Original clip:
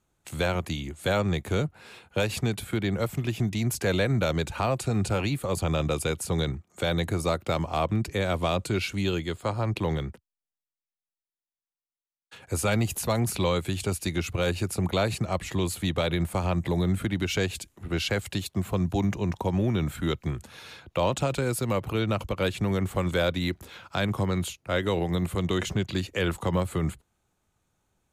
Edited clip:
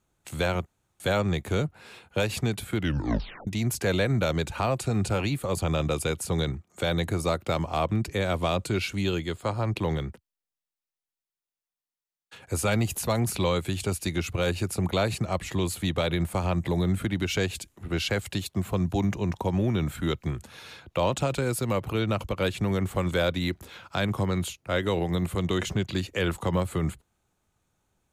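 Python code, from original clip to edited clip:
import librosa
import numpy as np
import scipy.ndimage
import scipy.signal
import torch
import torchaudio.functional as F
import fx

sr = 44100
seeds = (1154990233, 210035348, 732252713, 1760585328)

y = fx.edit(x, sr, fx.room_tone_fill(start_s=0.66, length_s=0.34),
    fx.tape_stop(start_s=2.76, length_s=0.71), tone=tone)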